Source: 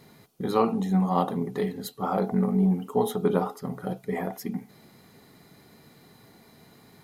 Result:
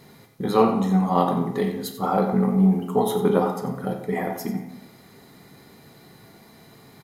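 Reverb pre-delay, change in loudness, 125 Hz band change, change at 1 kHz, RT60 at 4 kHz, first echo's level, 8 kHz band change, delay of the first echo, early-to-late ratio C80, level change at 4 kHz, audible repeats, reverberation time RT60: 12 ms, +4.5 dB, +4.0 dB, +5.0 dB, 0.60 s, −12.0 dB, +4.5 dB, 90 ms, 8.5 dB, +4.5 dB, 1, 0.90 s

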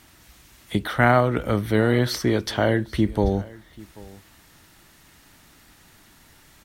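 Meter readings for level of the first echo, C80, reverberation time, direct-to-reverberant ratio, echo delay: −22.0 dB, no reverb audible, no reverb audible, no reverb audible, 787 ms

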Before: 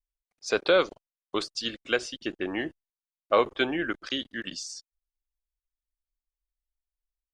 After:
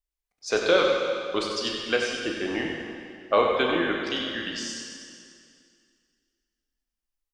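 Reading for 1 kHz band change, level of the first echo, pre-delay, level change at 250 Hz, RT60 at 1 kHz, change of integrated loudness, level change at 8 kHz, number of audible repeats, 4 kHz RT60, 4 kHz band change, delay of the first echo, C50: +3.5 dB, −8.0 dB, 8 ms, +3.0 dB, 2.3 s, +3.0 dB, +3.5 dB, 1, 2.1 s, +3.5 dB, 95 ms, 1.0 dB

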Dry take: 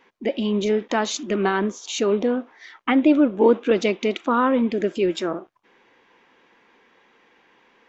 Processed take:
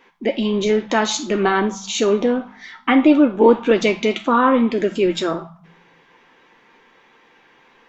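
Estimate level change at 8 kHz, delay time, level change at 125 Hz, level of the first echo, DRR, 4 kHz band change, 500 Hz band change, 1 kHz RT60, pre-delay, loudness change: can't be measured, no echo audible, +3.0 dB, no echo audible, 4.0 dB, +5.0 dB, +3.5 dB, 0.55 s, 5 ms, +4.0 dB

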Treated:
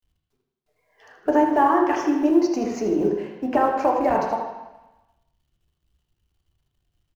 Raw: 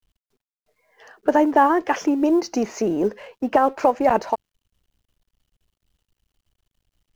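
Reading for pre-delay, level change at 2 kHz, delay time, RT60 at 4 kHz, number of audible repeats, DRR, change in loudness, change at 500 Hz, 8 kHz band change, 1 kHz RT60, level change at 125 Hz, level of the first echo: 3 ms, −2.5 dB, 78 ms, 1.1 s, 1, 0.0 dB, −0.5 dB, −1.0 dB, can't be measured, 1.1 s, +0.5 dB, −9.0 dB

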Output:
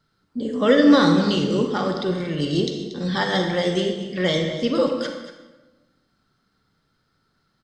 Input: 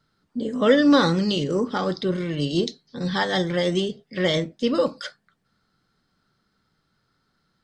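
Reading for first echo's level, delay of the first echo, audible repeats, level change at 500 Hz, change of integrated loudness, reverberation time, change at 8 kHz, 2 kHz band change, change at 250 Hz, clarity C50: −13.0 dB, 233 ms, 1, +1.5 dB, +2.0 dB, 1.1 s, +1.0 dB, +1.5 dB, +2.5 dB, 5.0 dB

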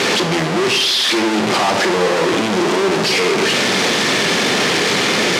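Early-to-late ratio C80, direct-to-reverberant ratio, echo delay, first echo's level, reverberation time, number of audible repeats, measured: 11.5 dB, 7.0 dB, no echo audible, no echo audible, 0.75 s, no echo audible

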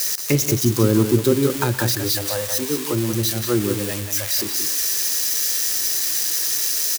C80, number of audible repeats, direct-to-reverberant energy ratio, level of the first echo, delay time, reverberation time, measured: no reverb audible, 2, no reverb audible, −18.0 dB, 119 ms, no reverb audible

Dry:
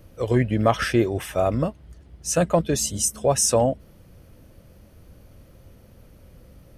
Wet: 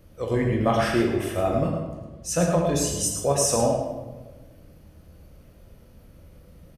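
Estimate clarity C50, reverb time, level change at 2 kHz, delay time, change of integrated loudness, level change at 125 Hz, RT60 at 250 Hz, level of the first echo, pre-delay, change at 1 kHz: 2.0 dB, 1.3 s, −1.5 dB, 108 ms, −1.5 dB, −1.5 dB, 1.5 s, −7.0 dB, 8 ms, −1.0 dB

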